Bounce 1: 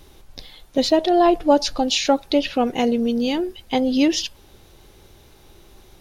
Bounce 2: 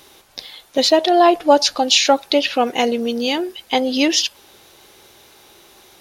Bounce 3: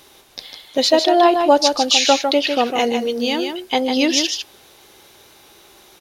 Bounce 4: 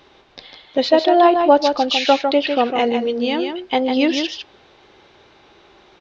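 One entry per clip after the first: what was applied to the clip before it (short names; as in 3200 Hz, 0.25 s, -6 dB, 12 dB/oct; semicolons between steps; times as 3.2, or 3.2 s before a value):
HPF 710 Hz 6 dB/oct; gain +7.5 dB
echo 0.152 s -6 dB; gain -1 dB
Gaussian blur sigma 2.2 samples; gain +1 dB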